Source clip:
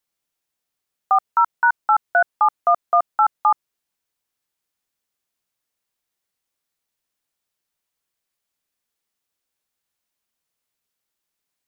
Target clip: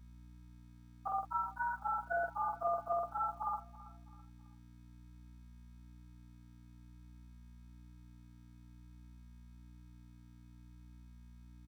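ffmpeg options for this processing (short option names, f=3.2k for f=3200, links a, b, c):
-filter_complex "[0:a]afftfilt=real='re':imag='-im':win_size=4096:overlap=0.75,agate=range=-33dB:threshold=-45dB:ratio=3:detection=peak,lowpass=1.5k,aecho=1:1:6.1:0.81,acrossover=split=430[a][b];[b]acompressor=threshold=-30dB:ratio=20[c];[a][c]amix=inputs=2:normalize=0,aeval=exprs='val(0)+0.00316*(sin(2*PI*60*n/s)+sin(2*PI*2*60*n/s)/2+sin(2*PI*3*60*n/s)/3+sin(2*PI*4*60*n/s)/4+sin(2*PI*5*60*n/s)/5)':c=same,acrusher=bits=10:mix=0:aa=0.000001,flanger=delay=4.9:depth=2.5:regen=-60:speed=0.53:shape=sinusoidal,asplit=2[d][e];[e]aecho=0:1:329|658|987:0.112|0.0449|0.018[f];[d][f]amix=inputs=2:normalize=0"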